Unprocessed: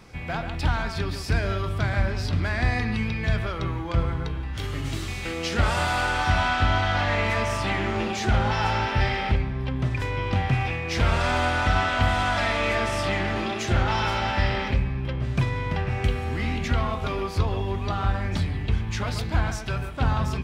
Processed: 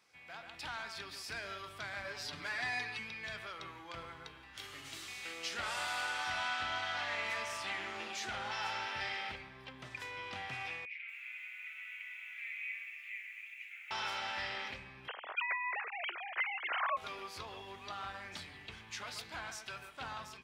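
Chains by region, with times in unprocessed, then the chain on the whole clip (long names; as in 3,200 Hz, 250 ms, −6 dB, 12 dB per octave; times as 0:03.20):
0:02.04–0:02.99: high-pass filter 43 Hz + comb filter 6.9 ms, depth 94%
0:10.85–0:13.91: flat-topped band-pass 2,300 Hz, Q 4.3 + feedback echo at a low word length 233 ms, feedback 55%, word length 9 bits, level −11 dB
0:15.08–0:16.97: three sine waves on the formant tracks + high-pass filter 510 Hz 24 dB per octave + notch filter 880 Hz, Q 18
whole clip: low-pass filter 1,700 Hz 6 dB per octave; first difference; automatic gain control gain up to 6 dB; level −1.5 dB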